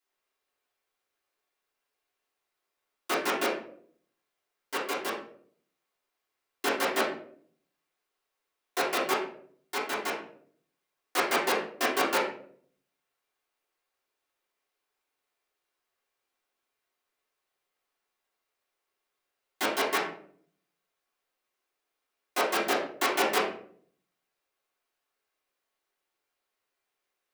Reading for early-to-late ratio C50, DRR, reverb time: 4.5 dB, -10.0 dB, 0.60 s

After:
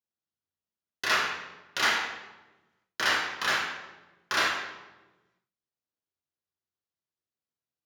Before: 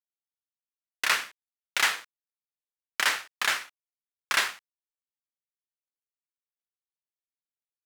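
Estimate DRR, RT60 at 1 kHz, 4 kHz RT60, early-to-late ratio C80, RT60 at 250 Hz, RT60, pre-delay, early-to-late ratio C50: -6.5 dB, 1.0 s, 0.80 s, 5.0 dB, 1.6 s, 1.2 s, 3 ms, 2.5 dB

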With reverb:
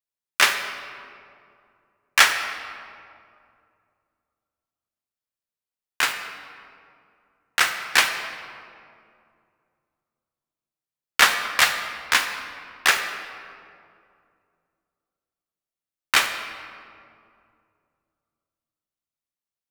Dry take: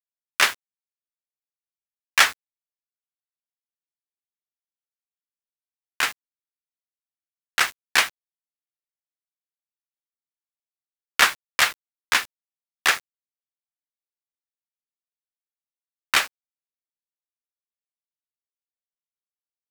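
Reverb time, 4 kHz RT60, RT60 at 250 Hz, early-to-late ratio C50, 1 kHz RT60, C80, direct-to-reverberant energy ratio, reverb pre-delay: 2.4 s, 1.3 s, 2.8 s, 7.0 dB, 2.3 s, 8.5 dB, 6.0 dB, 20 ms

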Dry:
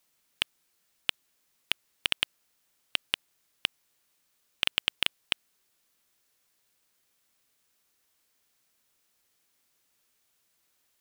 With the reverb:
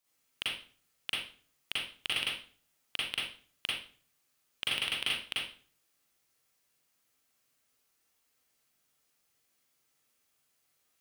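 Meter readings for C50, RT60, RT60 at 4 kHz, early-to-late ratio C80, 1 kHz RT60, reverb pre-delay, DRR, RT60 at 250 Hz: -1.0 dB, 0.45 s, 0.40 s, 5.0 dB, 0.40 s, 38 ms, -8.0 dB, 0.55 s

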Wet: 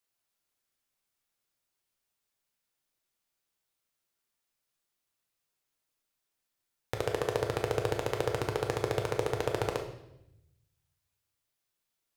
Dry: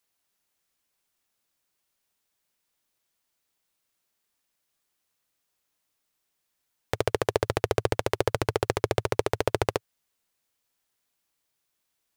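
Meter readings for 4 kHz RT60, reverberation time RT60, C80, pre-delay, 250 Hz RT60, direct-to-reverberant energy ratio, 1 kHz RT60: 0.85 s, 0.80 s, 10.5 dB, 8 ms, 1.2 s, 2.5 dB, 0.75 s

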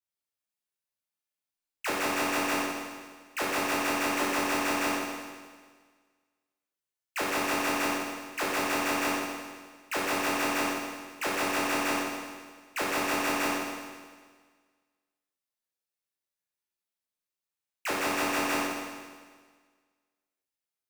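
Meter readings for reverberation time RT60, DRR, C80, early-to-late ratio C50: 1.6 s, -8.0 dB, 0.5 dB, -1.5 dB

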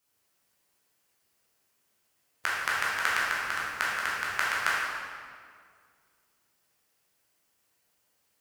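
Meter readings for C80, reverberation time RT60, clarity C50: 0.0 dB, 2.0 s, -2.5 dB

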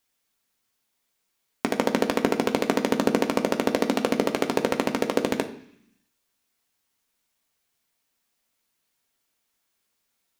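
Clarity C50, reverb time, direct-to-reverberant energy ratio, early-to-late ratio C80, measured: 12.5 dB, 0.70 s, 4.0 dB, 15.0 dB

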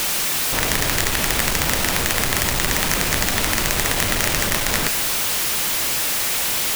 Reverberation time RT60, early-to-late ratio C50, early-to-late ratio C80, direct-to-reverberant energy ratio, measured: 1.8 s, 10.5 dB, 12.0 dB, 9.5 dB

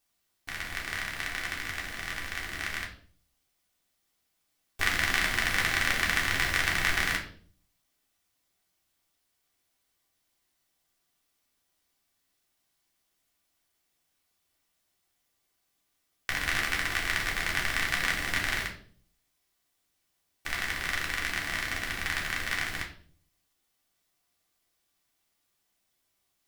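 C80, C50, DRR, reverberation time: 14.0 dB, 9.0 dB, -1.5 dB, 0.50 s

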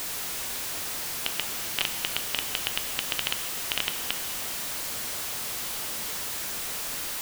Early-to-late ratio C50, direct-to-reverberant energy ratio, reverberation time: 8.5 dB, 7.5 dB, 2.8 s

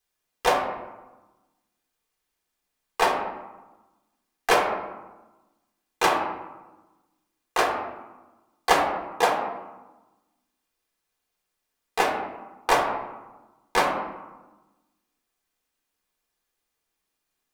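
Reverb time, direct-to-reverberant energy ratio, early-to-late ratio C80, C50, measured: 1.1 s, -0.5 dB, 6.5 dB, 4.5 dB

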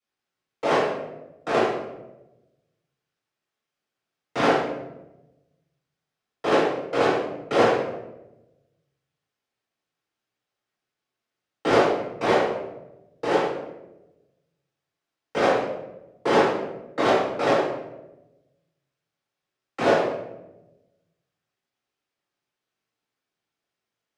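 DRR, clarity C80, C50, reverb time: -10.5 dB, 4.0 dB, 0.0 dB, 1.0 s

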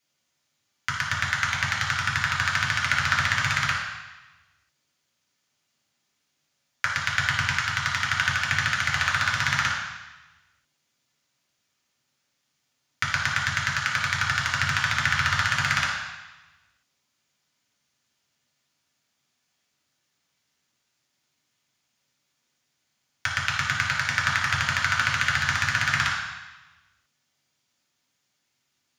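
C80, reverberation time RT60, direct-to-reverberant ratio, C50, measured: 4.5 dB, 1.1 s, -3.0 dB, 2.5 dB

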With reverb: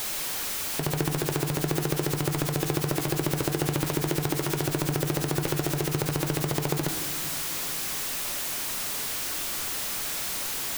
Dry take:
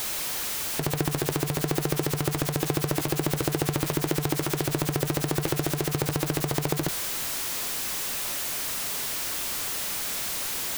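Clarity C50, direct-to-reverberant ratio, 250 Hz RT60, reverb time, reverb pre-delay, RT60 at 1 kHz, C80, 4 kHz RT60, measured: 10.5 dB, 8.0 dB, 3.2 s, 2.0 s, 3 ms, 1.7 s, 11.5 dB, 0.95 s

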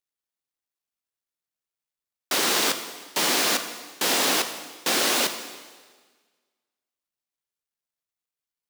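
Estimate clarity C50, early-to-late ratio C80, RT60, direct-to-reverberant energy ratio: 9.5 dB, 11.0 dB, 1.5 s, 8.0 dB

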